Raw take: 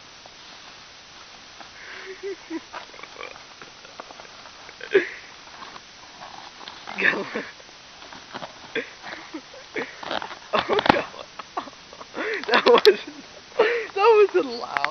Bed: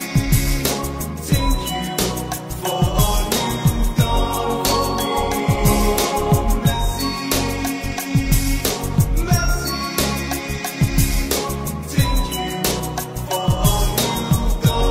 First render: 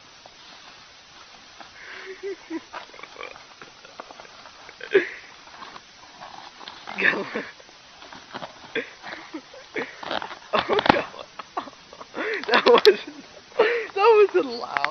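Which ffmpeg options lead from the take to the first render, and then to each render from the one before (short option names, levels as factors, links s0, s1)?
-af "afftdn=nr=6:nf=-46"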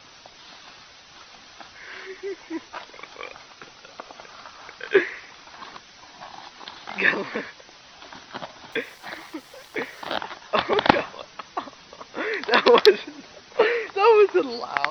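-filter_complex "[0:a]asettb=1/sr,asplit=3[s0][s1][s2];[s0]atrim=end=4.264[s3];[s1]atrim=start=4.26:end=5.24,asetpts=PTS-STARTPTS,afade=t=in:d=0.004:c=qsin,afade=t=out:st=0.976:d=0.004:c=qsin,equalizer=f=1200:t=o:w=0.77:g=4.5[s4];[s2]atrim=start=5.236[s5];[s3][s4]acrossfade=d=0.004:c1=hsin:c2=qsin[s6];[s6][s5]acrossfade=d=0.004:c1=qsin:c2=hsin,asettb=1/sr,asplit=3[s7][s8][s9];[s7]atrim=end=8.724[s10];[s8]atrim=start=8.72:end=10.17,asetpts=PTS-STARTPTS,afade=t=in:d=0.004:c=qsin,afade=t=out:st=1.446:d=0.004:c=qsin,aeval=exprs='val(0)*gte(abs(val(0)),0.00422)':c=same[s11];[s9]atrim=start=10.166[s12];[s10][s11]acrossfade=d=0.004:c1=hsin:c2=qsin[s13];[s13][s12]acrossfade=d=0.004:c1=qsin:c2=hsin"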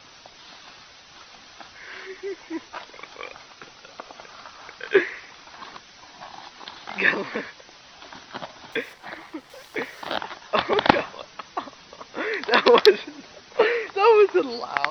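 -filter_complex "[0:a]asettb=1/sr,asplit=3[s0][s1][s2];[s0]atrim=end=8.934[s3];[s1]atrim=start=8.93:end=9.5,asetpts=PTS-STARTPTS,afade=t=in:d=0.004:c=qsin,afade=t=out:st=0.566:d=0.004:c=qsin,lowpass=f=2900:p=1[s4];[s2]atrim=start=9.496[s5];[s3][s4]acrossfade=d=0.004:c1=hsin:c2=qsin[s6];[s6][s5]acrossfade=d=0.004:c1=qsin:c2=hsin"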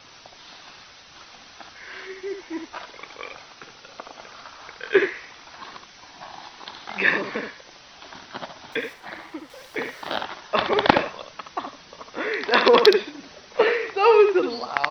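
-af "aecho=1:1:71:0.422"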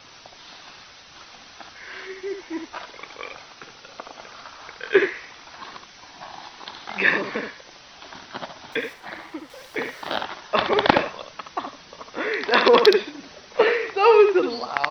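-af "volume=1.12,alimiter=limit=0.708:level=0:latency=1"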